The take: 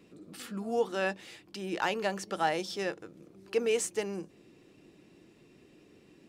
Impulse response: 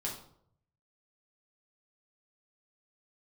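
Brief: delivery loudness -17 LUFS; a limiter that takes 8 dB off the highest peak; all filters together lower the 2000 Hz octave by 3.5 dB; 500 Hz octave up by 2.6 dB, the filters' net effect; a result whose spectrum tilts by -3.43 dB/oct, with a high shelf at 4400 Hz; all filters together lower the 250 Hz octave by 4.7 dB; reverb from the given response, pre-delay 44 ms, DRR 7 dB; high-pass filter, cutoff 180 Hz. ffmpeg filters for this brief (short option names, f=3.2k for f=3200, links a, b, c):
-filter_complex "[0:a]highpass=180,equalizer=f=250:t=o:g=-8,equalizer=f=500:t=o:g=5.5,equalizer=f=2k:t=o:g=-3.5,highshelf=f=4.4k:g=-6.5,alimiter=limit=-23dB:level=0:latency=1,asplit=2[a][b];[1:a]atrim=start_sample=2205,adelay=44[c];[b][c]afir=irnorm=-1:irlink=0,volume=-8.5dB[d];[a][d]amix=inputs=2:normalize=0,volume=17dB"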